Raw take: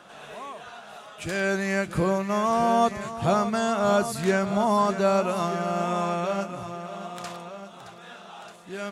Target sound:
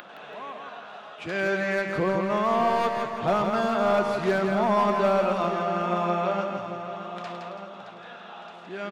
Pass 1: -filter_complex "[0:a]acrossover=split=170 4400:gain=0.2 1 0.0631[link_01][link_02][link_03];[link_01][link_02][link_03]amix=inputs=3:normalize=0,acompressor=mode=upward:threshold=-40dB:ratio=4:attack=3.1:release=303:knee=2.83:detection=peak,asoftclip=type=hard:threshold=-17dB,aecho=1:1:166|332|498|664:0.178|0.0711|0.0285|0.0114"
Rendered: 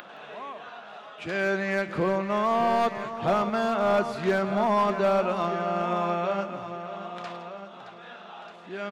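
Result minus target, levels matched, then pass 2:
echo-to-direct −10 dB
-filter_complex "[0:a]acrossover=split=170 4400:gain=0.2 1 0.0631[link_01][link_02][link_03];[link_01][link_02][link_03]amix=inputs=3:normalize=0,acompressor=mode=upward:threshold=-40dB:ratio=4:attack=3.1:release=303:knee=2.83:detection=peak,asoftclip=type=hard:threshold=-17dB,aecho=1:1:166|332|498|664|830:0.562|0.225|0.09|0.036|0.0144"

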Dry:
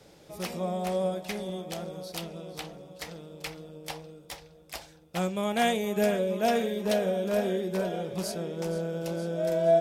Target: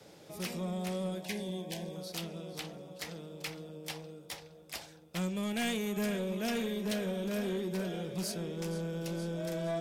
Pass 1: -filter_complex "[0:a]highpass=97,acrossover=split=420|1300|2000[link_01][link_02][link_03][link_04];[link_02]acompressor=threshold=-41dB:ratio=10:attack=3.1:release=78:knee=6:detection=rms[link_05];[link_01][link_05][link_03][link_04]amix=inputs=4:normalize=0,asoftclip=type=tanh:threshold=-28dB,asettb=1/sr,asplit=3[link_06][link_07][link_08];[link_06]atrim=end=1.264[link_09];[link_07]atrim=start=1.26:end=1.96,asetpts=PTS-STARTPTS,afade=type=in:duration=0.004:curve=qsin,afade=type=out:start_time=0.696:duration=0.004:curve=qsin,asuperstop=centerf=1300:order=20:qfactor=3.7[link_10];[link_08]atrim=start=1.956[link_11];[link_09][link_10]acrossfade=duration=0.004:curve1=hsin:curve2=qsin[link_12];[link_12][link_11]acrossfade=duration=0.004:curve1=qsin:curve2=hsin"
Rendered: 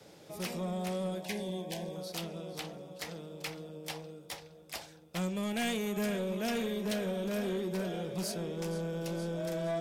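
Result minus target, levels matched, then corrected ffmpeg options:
downward compressor: peak gain reduction −6.5 dB
-filter_complex "[0:a]highpass=97,acrossover=split=420|1300|2000[link_01][link_02][link_03][link_04];[link_02]acompressor=threshold=-48dB:ratio=10:attack=3.1:release=78:knee=6:detection=rms[link_05];[link_01][link_05][link_03][link_04]amix=inputs=4:normalize=0,asoftclip=type=tanh:threshold=-28dB,asettb=1/sr,asplit=3[link_06][link_07][link_08];[link_06]atrim=end=1.264[link_09];[link_07]atrim=start=1.26:end=1.96,asetpts=PTS-STARTPTS,afade=type=in:duration=0.004:curve=qsin,afade=type=out:start_time=0.696:duration=0.004:curve=qsin,asuperstop=centerf=1300:order=20:qfactor=3.7[link_10];[link_08]atrim=start=1.956[link_11];[link_09][link_10]acrossfade=duration=0.004:curve1=hsin:curve2=qsin[link_12];[link_12][link_11]acrossfade=duration=0.004:curve1=qsin:curve2=hsin"

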